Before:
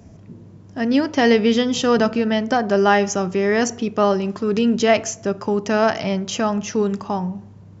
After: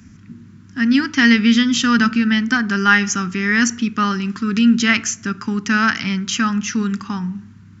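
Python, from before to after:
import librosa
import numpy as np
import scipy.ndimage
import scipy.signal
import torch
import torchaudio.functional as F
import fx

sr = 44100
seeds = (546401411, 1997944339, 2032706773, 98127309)

y = fx.curve_eq(x, sr, hz=(160.0, 240.0, 600.0, 1400.0, 3200.0), db=(0, 7, -23, 11, 6))
y = F.gain(torch.from_numpy(y), -1.0).numpy()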